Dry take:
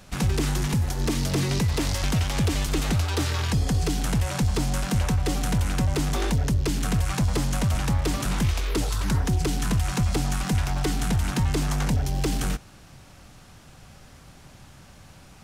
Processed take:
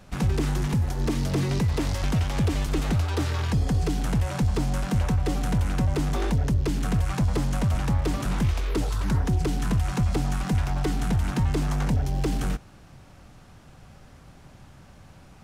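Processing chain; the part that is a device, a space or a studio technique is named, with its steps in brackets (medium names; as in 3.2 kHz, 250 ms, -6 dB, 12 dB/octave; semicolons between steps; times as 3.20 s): behind a face mask (treble shelf 2.3 kHz -8 dB)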